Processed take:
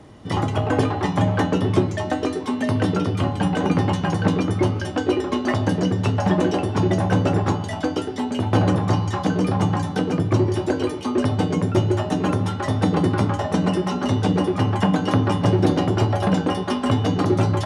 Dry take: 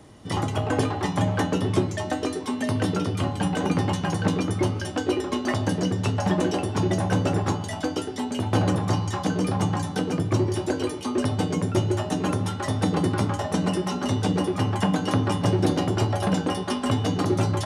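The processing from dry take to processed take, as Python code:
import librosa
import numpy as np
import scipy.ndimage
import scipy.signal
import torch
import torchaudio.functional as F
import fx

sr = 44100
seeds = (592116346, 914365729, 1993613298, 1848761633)

y = fx.lowpass(x, sr, hz=3400.0, slope=6)
y = F.gain(torch.from_numpy(y), 4.0).numpy()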